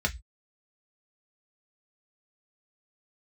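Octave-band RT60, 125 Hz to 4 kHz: 0.35, 0.15, 0.10, 0.15, 0.20, 0.20 s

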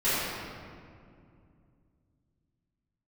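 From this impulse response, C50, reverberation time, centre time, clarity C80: -4.5 dB, 2.3 s, 0.151 s, -2.0 dB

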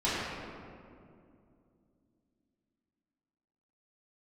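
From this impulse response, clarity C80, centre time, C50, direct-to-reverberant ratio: -1.5 dB, 0.146 s, -3.0 dB, -11.5 dB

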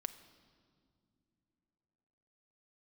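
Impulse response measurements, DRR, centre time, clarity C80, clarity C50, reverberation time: 10.0 dB, 8 ms, 14.5 dB, 13.5 dB, not exponential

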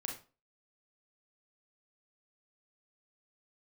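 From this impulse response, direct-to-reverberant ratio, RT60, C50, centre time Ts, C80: 0.5 dB, 0.35 s, 7.0 dB, 25 ms, 13.0 dB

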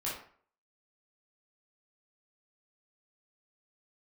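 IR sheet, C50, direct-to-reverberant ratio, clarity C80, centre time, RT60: 3.0 dB, -7.0 dB, 8.5 dB, 42 ms, 0.50 s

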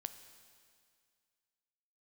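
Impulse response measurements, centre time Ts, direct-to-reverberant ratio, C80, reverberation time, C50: 16 ms, 10.0 dB, 12.0 dB, 2.1 s, 11.0 dB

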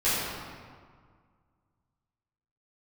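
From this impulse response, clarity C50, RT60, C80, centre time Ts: -3.0 dB, 1.8 s, -0.5 dB, 0.127 s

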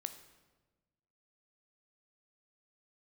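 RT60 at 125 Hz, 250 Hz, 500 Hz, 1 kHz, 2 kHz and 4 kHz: 1.7, 1.6, 1.4, 1.1, 1.0, 0.90 s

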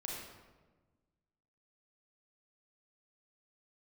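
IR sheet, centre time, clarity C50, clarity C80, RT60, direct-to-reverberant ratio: 77 ms, -0.5 dB, 2.5 dB, 1.3 s, -3.0 dB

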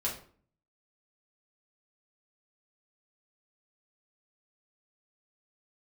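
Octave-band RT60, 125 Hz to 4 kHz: 0.70, 0.65, 0.50, 0.45, 0.40, 0.35 s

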